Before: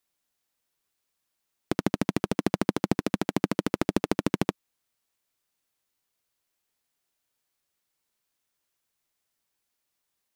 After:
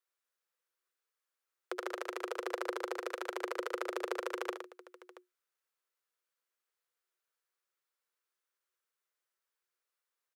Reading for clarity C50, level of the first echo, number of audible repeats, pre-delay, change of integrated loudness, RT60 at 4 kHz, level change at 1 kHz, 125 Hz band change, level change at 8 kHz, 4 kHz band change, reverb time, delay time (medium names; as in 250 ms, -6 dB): no reverb, -10.0 dB, 3, no reverb, -10.5 dB, no reverb, -6.0 dB, under -40 dB, -10.0 dB, -9.0 dB, no reverb, 68 ms